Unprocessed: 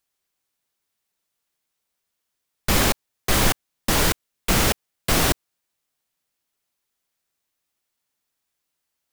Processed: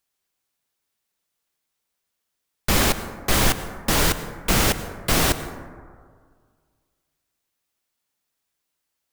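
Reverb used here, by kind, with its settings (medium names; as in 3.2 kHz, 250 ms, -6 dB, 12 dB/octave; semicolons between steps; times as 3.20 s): plate-style reverb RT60 1.9 s, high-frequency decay 0.3×, pre-delay 85 ms, DRR 11.5 dB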